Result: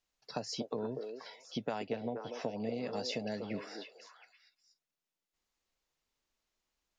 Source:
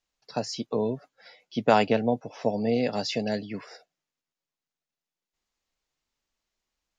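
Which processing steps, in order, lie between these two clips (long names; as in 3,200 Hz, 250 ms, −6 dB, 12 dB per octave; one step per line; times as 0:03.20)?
downward compressor 8 to 1, threshold −32 dBFS, peak gain reduction 17.5 dB
echo through a band-pass that steps 241 ms, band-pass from 430 Hz, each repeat 1.4 octaves, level −3 dB
level −2 dB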